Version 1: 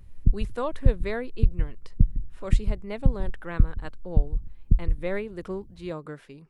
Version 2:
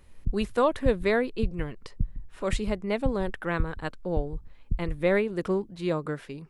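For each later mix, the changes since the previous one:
speech +6.5 dB; background -9.0 dB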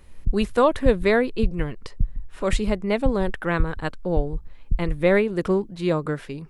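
speech +5.0 dB; master: add low shelf 69 Hz +8 dB

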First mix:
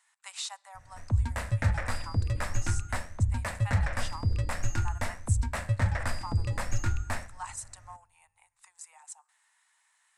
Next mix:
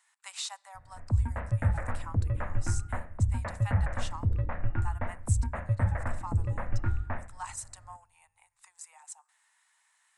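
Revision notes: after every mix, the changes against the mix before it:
background: add Gaussian blur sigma 4.5 samples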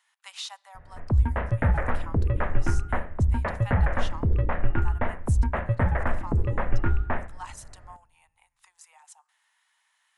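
background +8.0 dB; master: add thirty-one-band EQ 100 Hz -11 dB, 400 Hz +9 dB, 3150 Hz +6 dB, 8000 Hz -10 dB

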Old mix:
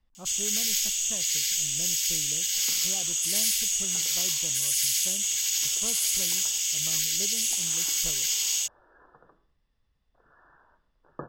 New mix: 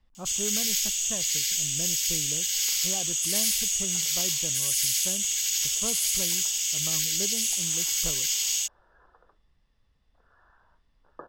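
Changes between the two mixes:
speech +5.0 dB; second sound: add HPF 400 Hz 12 dB/oct; reverb: off

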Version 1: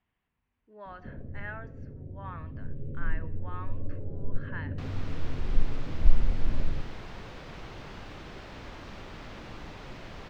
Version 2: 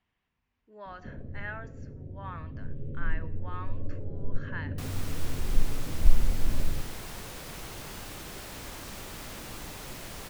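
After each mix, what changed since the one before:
master: remove air absorption 210 m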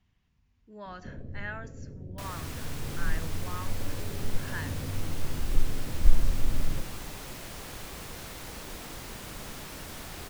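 speech: add tone controls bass +14 dB, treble +12 dB; second sound: entry -2.60 s

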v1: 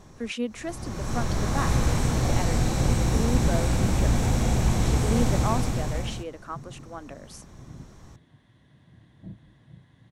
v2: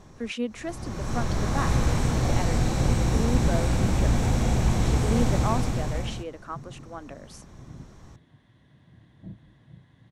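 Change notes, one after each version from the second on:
master: add high shelf 7900 Hz -6 dB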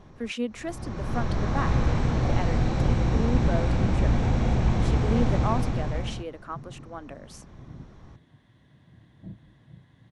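first sound: add air absorption 160 m

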